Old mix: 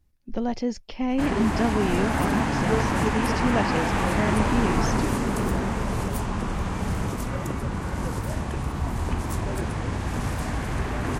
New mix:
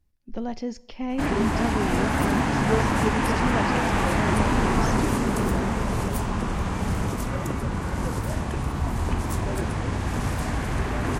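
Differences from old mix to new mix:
speech −5.5 dB
reverb: on

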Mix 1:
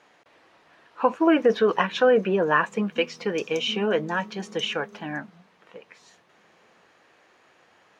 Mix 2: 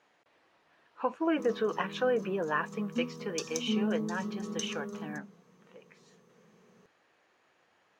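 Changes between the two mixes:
speech −10.0 dB
background +7.0 dB

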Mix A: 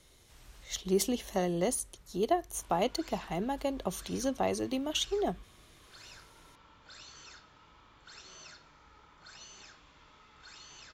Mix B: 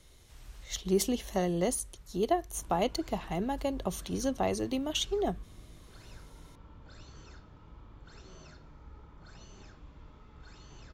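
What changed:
background: add tilt shelving filter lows +9 dB, about 850 Hz
master: add low-shelf EQ 110 Hz +8 dB

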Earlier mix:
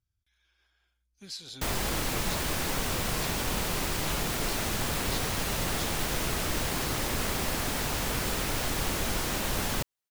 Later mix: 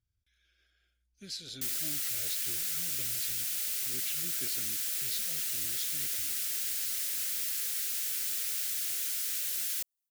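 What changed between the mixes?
background: add first difference
master: add Butterworth band-reject 940 Hz, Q 1.3

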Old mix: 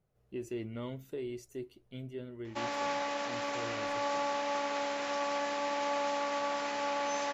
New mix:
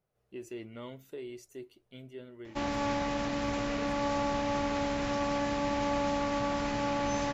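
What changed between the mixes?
speech: add low-shelf EQ 270 Hz −9 dB
background: remove high-pass filter 500 Hz 12 dB per octave

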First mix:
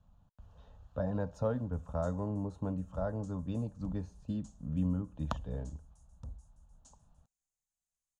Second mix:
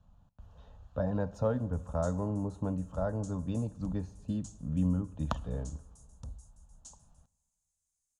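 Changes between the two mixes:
background: add high-shelf EQ 3,100 Hz +11 dB
reverb: on, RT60 1.7 s

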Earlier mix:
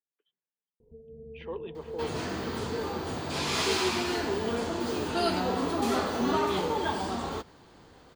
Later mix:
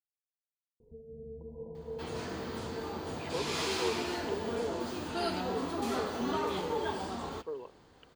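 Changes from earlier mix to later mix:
speech: entry +1.85 s
second sound −6.0 dB

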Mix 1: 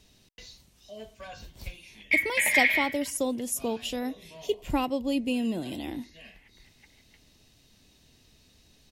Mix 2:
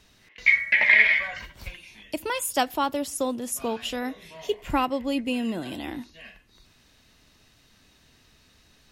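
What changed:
background: entry −1.65 s
master: add parametric band 1,400 Hz +10.5 dB 1.3 octaves

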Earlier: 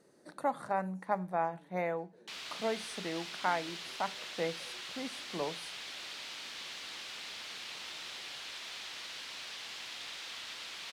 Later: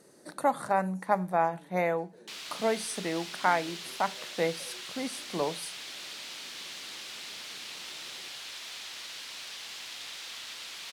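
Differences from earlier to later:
speech +6.0 dB
master: add high-shelf EQ 6,600 Hz +10 dB

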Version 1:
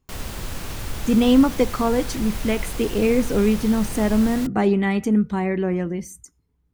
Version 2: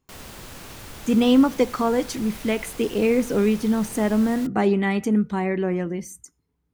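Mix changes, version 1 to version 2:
background −5.5 dB
master: add low-shelf EQ 89 Hz −11.5 dB

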